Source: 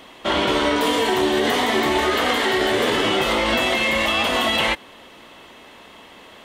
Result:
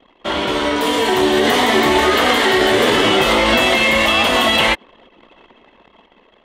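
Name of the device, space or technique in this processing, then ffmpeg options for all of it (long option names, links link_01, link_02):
voice memo with heavy noise removal: -af "anlmdn=0.398,dynaudnorm=framelen=410:gausssize=5:maxgain=11.5dB"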